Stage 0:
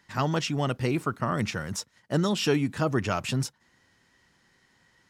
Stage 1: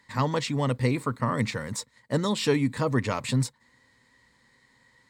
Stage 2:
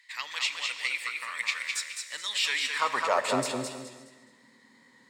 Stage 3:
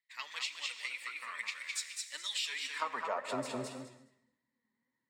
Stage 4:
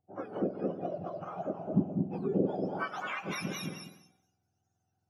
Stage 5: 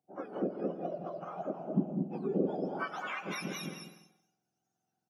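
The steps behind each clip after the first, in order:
EQ curve with evenly spaced ripples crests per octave 0.99, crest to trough 9 dB
high-pass filter sweep 2,400 Hz → 230 Hz, 0:02.43–0:03.66; reverb whose tail is shaped and stops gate 380 ms flat, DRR 10 dB; feedback echo with a swinging delay time 210 ms, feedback 32%, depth 62 cents, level −4.5 dB
downward compressor 12 to 1, threshold −31 dBFS, peak gain reduction 11.5 dB; flanger 1.8 Hz, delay 2.8 ms, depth 2.3 ms, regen +51%; multiband upward and downward expander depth 100%
frequency axis turned over on the octave scale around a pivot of 1,200 Hz; level +3 dB
high-pass filter 160 Hz 24 dB per octave; slap from a distant wall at 28 metres, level −14 dB; level −1.5 dB

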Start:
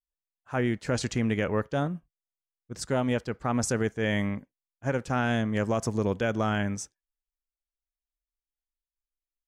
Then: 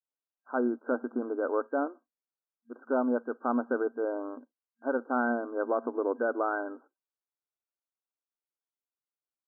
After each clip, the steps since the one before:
brick-wall band-pass 230–1,600 Hz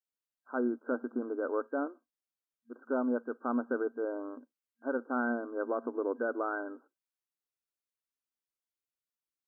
parametric band 780 Hz −5 dB 0.9 octaves
level −2 dB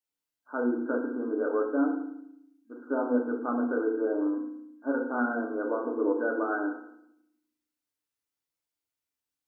feedback delay network reverb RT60 0.73 s, low-frequency decay 1.55×, high-frequency decay 1×, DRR −1.5 dB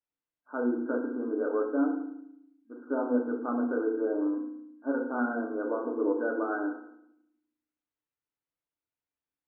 high-frequency loss of the air 430 metres

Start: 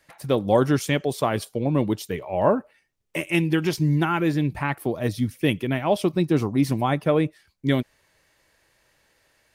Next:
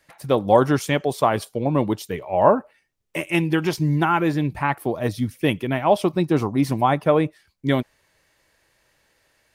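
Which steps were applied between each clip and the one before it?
dynamic equaliser 900 Hz, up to +7 dB, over −35 dBFS, Q 1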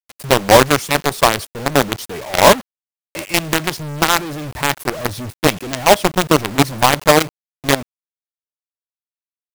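log-companded quantiser 2 bits
level −1 dB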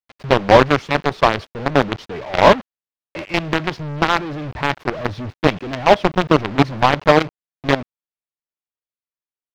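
high-frequency loss of the air 230 metres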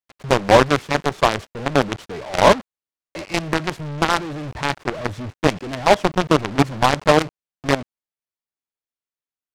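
short delay modulated by noise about 2,000 Hz, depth 0.041 ms
level −2 dB

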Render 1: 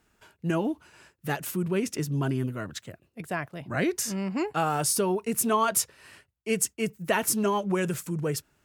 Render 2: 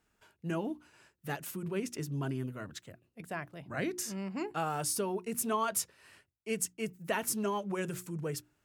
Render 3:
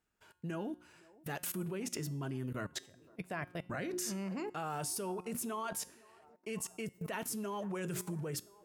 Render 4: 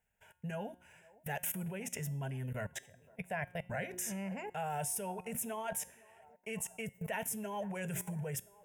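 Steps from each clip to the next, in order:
mains-hum notches 60/120/180/240/300/360 Hz; level −7.5 dB
delay with a band-pass on its return 511 ms, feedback 60%, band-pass 590 Hz, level −21 dB; output level in coarse steps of 23 dB; tuned comb filter 180 Hz, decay 0.62 s, harmonics all, mix 50%; level +13 dB
phaser with its sweep stopped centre 1,200 Hz, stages 6; level +4 dB

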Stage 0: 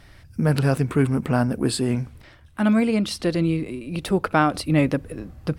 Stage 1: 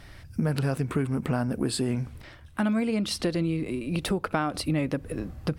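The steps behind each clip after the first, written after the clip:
downward compressor, threshold −25 dBFS, peak gain reduction 11.5 dB
level +1.5 dB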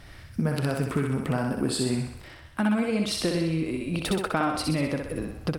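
feedback echo with a high-pass in the loop 63 ms, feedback 59%, high-pass 330 Hz, level −3 dB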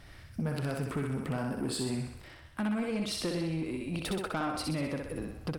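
soft clipping −20.5 dBFS, distortion −17 dB
level −5 dB

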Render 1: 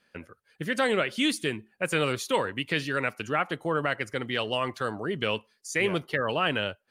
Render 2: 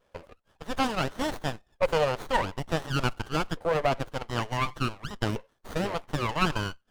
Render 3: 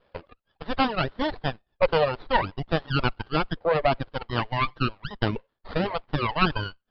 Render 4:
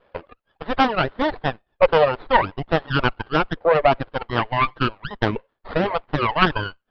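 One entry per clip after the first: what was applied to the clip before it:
auto-filter high-pass saw up 0.56 Hz 510–1,900 Hz; windowed peak hold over 17 samples
reverb reduction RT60 1.3 s; Butterworth low-pass 5,000 Hz 96 dB per octave; level +4 dB
bass and treble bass −5 dB, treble −13 dB; highs frequency-modulated by the lows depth 0.19 ms; level +6.5 dB

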